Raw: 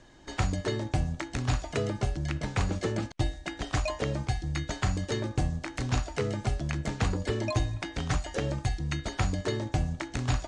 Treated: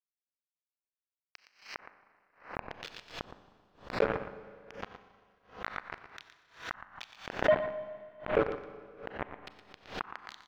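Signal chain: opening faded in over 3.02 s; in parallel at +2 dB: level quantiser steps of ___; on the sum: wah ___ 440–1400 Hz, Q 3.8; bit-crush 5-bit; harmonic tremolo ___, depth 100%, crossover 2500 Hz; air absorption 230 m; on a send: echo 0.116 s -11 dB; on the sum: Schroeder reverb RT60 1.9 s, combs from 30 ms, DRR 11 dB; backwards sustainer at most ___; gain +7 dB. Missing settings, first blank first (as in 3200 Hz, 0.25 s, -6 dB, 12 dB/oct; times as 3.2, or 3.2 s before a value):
19 dB, 0.21 Hz, 1.2 Hz, 150 dB/s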